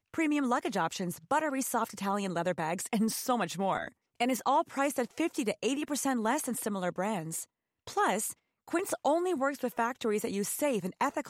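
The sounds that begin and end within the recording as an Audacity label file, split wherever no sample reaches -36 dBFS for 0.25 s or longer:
4.200000	7.430000	sound
7.870000	8.320000	sound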